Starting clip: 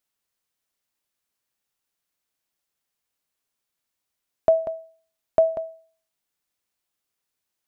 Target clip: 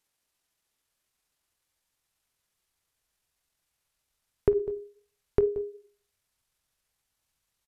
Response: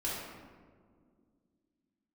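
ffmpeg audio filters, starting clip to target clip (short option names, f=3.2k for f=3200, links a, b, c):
-filter_complex "[0:a]asplit=2[a][b];[b]acompressor=threshold=-31dB:ratio=10,volume=1.5dB[c];[a][c]amix=inputs=2:normalize=0,flanger=delay=9.5:depth=9.4:regen=-65:speed=0.52:shape=triangular,asetrate=27781,aresample=44100,atempo=1.5874,asubboost=boost=4:cutoff=120"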